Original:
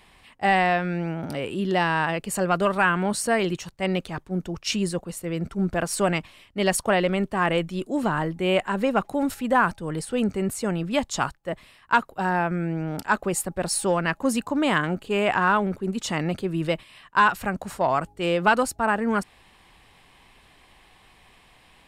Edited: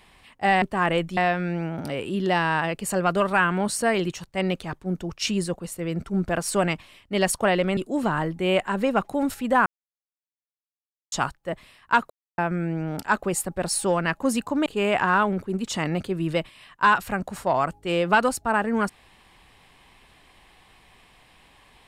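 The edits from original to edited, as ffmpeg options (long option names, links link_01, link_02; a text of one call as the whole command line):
ffmpeg -i in.wav -filter_complex "[0:a]asplit=9[link_01][link_02][link_03][link_04][link_05][link_06][link_07][link_08][link_09];[link_01]atrim=end=0.622[link_10];[link_02]atrim=start=7.218:end=7.772[link_11];[link_03]atrim=start=0.618:end=7.222[link_12];[link_04]atrim=start=7.768:end=9.66,asetpts=PTS-STARTPTS,afade=type=out:start_time=1.888:duration=0.004:curve=hsin[link_13];[link_05]atrim=start=9.66:end=11.12,asetpts=PTS-STARTPTS,volume=0[link_14];[link_06]atrim=start=11.12:end=12.1,asetpts=PTS-STARTPTS,afade=type=in:duration=0.004:curve=hsin,afade=type=out:start_time=0.976:duration=0.004:curve=hsin[link_15];[link_07]atrim=start=12.1:end=12.38,asetpts=PTS-STARTPTS,volume=0[link_16];[link_08]atrim=start=12.38:end=14.662,asetpts=PTS-STARTPTS,afade=type=in:duration=0.004:curve=hsin[link_17];[link_09]atrim=start=14.998[link_18];[link_10][link_11]acrossfade=duration=0.004:curve1=hsin:curve2=hsin[link_19];[link_19][link_12]acrossfade=duration=0.004:curve1=hsin:curve2=hsin[link_20];[link_13][link_14][link_15][link_16][link_17]concat=n=5:v=0:a=1[link_21];[link_20][link_21]acrossfade=duration=0.004:curve1=hsin:curve2=hsin[link_22];[link_22][link_18]acrossfade=duration=0.004:curve1=hsin:curve2=hsin" out.wav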